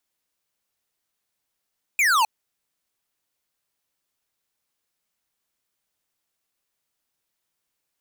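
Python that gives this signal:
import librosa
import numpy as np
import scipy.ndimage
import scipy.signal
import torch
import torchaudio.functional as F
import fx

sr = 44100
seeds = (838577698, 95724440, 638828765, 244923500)

y = fx.laser_zap(sr, level_db=-18.5, start_hz=2500.0, end_hz=830.0, length_s=0.26, wave='square')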